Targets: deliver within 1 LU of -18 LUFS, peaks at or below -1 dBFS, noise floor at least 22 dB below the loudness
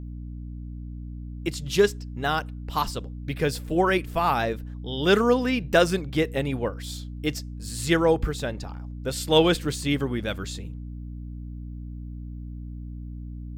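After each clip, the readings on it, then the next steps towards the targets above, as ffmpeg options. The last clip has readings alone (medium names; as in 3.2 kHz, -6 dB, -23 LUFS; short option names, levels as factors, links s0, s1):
hum 60 Hz; highest harmonic 300 Hz; hum level -33 dBFS; loudness -25.5 LUFS; peak level -5.0 dBFS; loudness target -18.0 LUFS
-> -af "bandreject=f=60:t=h:w=6,bandreject=f=120:t=h:w=6,bandreject=f=180:t=h:w=6,bandreject=f=240:t=h:w=6,bandreject=f=300:t=h:w=6"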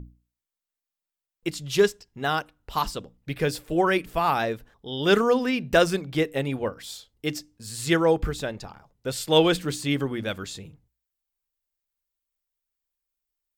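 hum not found; loudness -25.0 LUFS; peak level -5.5 dBFS; loudness target -18.0 LUFS
-> -af "volume=2.24,alimiter=limit=0.891:level=0:latency=1"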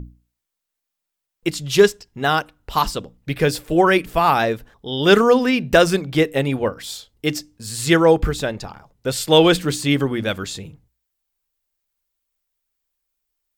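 loudness -18.5 LUFS; peak level -1.0 dBFS; noise floor -82 dBFS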